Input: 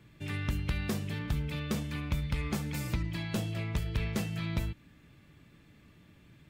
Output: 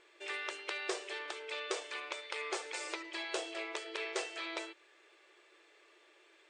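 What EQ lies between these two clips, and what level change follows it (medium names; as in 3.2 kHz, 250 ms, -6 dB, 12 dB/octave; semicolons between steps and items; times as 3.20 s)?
brick-wall FIR band-pass 330–9200 Hz; +2.0 dB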